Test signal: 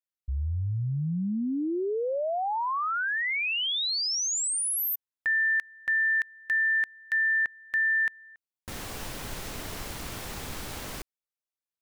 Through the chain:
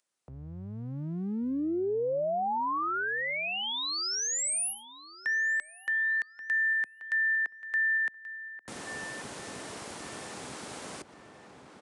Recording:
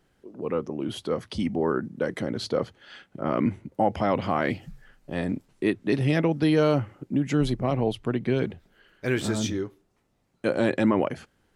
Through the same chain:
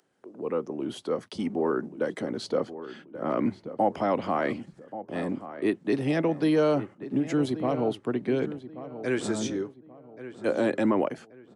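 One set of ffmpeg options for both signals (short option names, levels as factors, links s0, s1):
-filter_complex "[0:a]agate=range=0.0141:threshold=0.00398:ratio=3:release=67:detection=rms,acrossover=split=220|380|4100[s0][s1][s2][s3];[s0]aeval=exprs='max(val(0),0)':c=same[s4];[s4][s1][s2][s3]amix=inputs=4:normalize=0,highpass=150,asplit=2[s5][s6];[s6]adelay=1132,lowpass=f=2100:p=1,volume=0.224,asplit=2[s7][s8];[s8]adelay=1132,lowpass=f=2100:p=1,volume=0.3,asplit=2[s9][s10];[s10]adelay=1132,lowpass=f=2100:p=1,volume=0.3[s11];[s5][s7][s9][s11]amix=inputs=4:normalize=0,aresample=22050,aresample=44100,equalizer=f=3100:t=o:w=2.3:g=-5,acompressor=mode=upward:threshold=0.00562:ratio=2.5:attack=5.2:release=145:knee=2.83:detection=peak"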